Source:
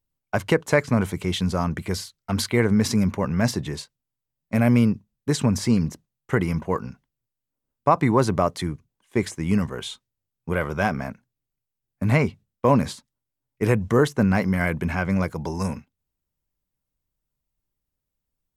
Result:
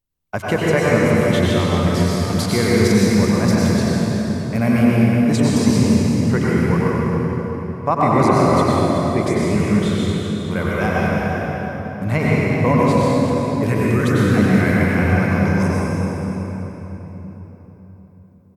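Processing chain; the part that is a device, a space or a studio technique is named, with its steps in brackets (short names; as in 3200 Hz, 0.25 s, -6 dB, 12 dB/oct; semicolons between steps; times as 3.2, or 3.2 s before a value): 13.65–14.37 band shelf 650 Hz -8 dB; cave (echo 0.376 s -11.5 dB; reverb RT60 4.1 s, pre-delay 89 ms, DRR -6.5 dB); gain -1 dB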